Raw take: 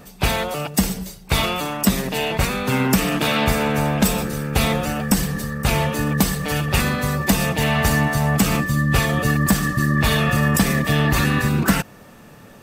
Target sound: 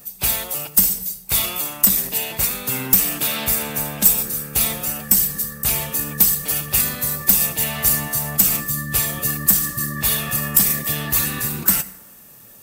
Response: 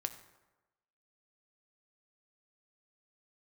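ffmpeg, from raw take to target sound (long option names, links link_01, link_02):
-filter_complex "[0:a]aemphasis=mode=production:type=75fm,aeval=exprs='clip(val(0),-1,0.531)':channel_layout=same,asplit=2[link_01][link_02];[1:a]atrim=start_sample=2205,highshelf=frequency=4800:gain=11[link_03];[link_02][link_03]afir=irnorm=-1:irlink=0,volume=1.5dB[link_04];[link_01][link_04]amix=inputs=2:normalize=0,volume=-15.5dB"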